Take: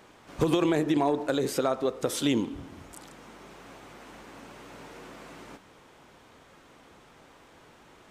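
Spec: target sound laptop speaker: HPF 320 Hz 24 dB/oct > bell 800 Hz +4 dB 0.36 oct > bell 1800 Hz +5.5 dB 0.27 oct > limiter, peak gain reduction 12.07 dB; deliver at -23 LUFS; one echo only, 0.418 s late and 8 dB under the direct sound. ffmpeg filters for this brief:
-af "highpass=f=320:w=0.5412,highpass=f=320:w=1.3066,equalizer=f=800:t=o:w=0.36:g=4,equalizer=f=1.8k:t=o:w=0.27:g=5.5,aecho=1:1:418:0.398,volume=13.5dB,alimiter=limit=-11dB:level=0:latency=1"

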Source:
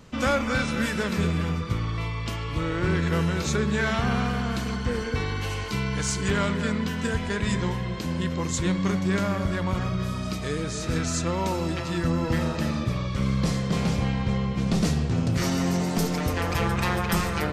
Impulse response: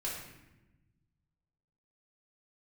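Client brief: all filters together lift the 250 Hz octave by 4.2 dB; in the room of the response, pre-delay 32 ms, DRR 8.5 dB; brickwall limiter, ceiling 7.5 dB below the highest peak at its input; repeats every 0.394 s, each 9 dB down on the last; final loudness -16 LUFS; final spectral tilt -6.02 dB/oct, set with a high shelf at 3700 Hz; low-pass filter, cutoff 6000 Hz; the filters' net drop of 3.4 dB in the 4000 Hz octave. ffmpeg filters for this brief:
-filter_complex "[0:a]lowpass=6k,equalizer=f=250:t=o:g=6,highshelf=f=3.7k:g=6.5,equalizer=f=4k:t=o:g=-8,alimiter=limit=-18.5dB:level=0:latency=1,aecho=1:1:394|788|1182|1576:0.355|0.124|0.0435|0.0152,asplit=2[a][b];[1:a]atrim=start_sample=2205,adelay=32[c];[b][c]afir=irnorm=-1:irlink=0,volume=-11dB[d];[a][d]amix=inputs=2:normalize=0,volume=9.5dB"

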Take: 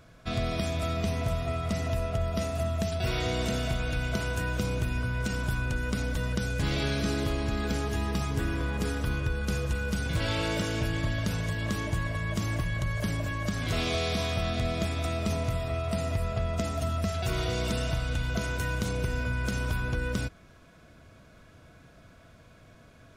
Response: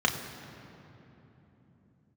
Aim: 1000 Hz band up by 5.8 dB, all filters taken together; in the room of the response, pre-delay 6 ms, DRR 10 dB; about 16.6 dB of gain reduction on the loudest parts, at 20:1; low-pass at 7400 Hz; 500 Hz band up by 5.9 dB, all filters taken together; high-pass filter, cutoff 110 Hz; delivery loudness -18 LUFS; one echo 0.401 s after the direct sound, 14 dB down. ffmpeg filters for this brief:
-filter_complex "[0:a]highpass=110,lowpass=7.4k,equalizer=f=500:t=o:g=5.5,equalizer=f=1k:t=o:g=6,acompressor=threshold=-40dB:ratio=20,aecho=1:1:401:0.2,asplit=2[a][b];[1:a]atrim=start_sample=2205,adelay=6[c];[b][c]afir=irnorm=-1:irlink=0,volume=-22.5dB[d];[a][d]amix=inputs=2:normalize=0,volume=25.5dB"

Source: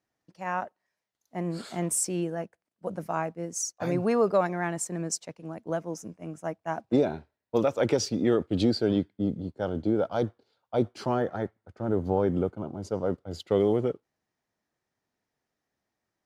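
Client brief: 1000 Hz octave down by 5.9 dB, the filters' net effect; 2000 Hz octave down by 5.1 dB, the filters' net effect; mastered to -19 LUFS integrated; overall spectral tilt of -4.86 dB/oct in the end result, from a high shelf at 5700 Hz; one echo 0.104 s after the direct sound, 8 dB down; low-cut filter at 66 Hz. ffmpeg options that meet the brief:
-af "highpass=66,equalizer=f=1k:t=o:g=-8,equalizer=f=2k:t=o:g=-4,highshelf=f=5.7k:g=5.5,aecho=1:1:104:0.398,volume=10dB"

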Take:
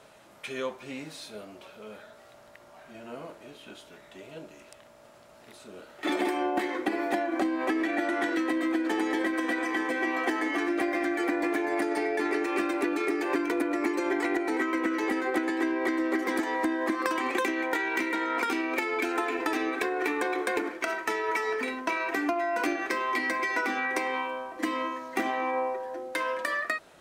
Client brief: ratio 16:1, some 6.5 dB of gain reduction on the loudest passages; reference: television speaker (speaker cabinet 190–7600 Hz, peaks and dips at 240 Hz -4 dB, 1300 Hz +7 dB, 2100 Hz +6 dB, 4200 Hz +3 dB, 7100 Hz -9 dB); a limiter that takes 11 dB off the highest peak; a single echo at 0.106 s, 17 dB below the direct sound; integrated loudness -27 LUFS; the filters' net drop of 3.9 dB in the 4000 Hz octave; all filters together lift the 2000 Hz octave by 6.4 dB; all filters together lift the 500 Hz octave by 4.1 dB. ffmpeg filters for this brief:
-af "equalizer=f=500:t=o:g=5.5,equalizer=f=2k:t=o:g=4,equalizer=f=4k:t=o:g=-8.5,acompressor=threshold=-27dB:ratio=16,alimiter=level_in=1dB:limit=-24dB:level=0:latency=1,volume=-1dB,highpass=f=190:w=0.5412,highpass=f=190:w=1.3066,equalizer=f=240:t=q:w=4:g=-4,equalizer=f=1.3k:t=q:w=4:g=7,equalizer=f=2.1k:t=q:w=4:g=6,equalizer=f=4.2k:t=q:w=4:g=3,equalizer=f=7.1k:t=q:w=4:g=-9,lowpass=f=7.6k:w=0.5412,lowpass=f=7.6k:w=1.3066,aecho=1:1:106:0.141,volume=4.5dB"

